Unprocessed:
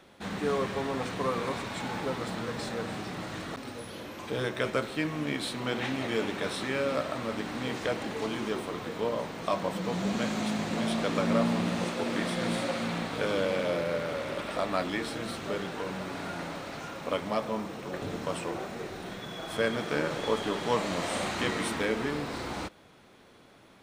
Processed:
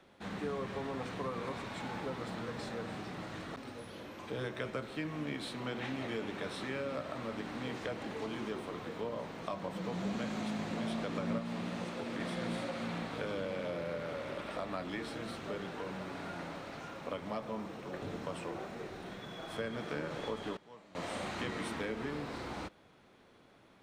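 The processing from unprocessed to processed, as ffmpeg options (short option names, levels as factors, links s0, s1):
-filter_complex "[0:a]asettb=1/sr,asplit=3[s0][s1][s2];[s0]atrim=end=11.384[s3];[s1]atrim=start=11.38:end=12.2,asetpts=PTS-STARTPTS,afade=t=in:d=0.004:c=qsin,afade=t=out:st=0.816:d=0.004:c=qsin,acrossover=split=200|1300[s4][s5][s6];[s4]acompressor=threshold=0.0126:ratio=4[s7];[s5]acompressor=threshold=0.0224:ratio=4[s8];[s6]acompressor=threshold=0.0112:ratio=4[s9];[s7][s8][s9]amix=inputs=3:normalize=0[s10];[s2]atrim=start=12.196[s11];[s3][s10]acrossfade=d=0.004:c1=hsin:c2=qsin[s12];[s12][s11]acrossfade=d=0.004:c1=qsin:c2=hsin,asplit=3[s13][s14][s15];[s13]atrim=end=20.57,asetpts=PTS-STARTPTS,afade=t=out:st=20.13:d=0.44:c=log:silence=0.0841395[s16];[s14]atrim=start=20.57:end=20.95,asetpts=PTS-STARTPTS,volume=0.0841[s17];[s15]atrim=start=20.95,asetpts=PTS-STARTPTS,afade=t=in:d=0.44:c=log:silence=0.0841395[s18];[s16][s17][s18]concat=n=3:v=0:a=1,highshelf=f=5400:g=-7,acrossover=split=200[s19][s20];[s20]acompressor=threshold=0.0316:ratio=4[s21];[s19][s21]amix=inputs=2:normalize=0,volume=0.531"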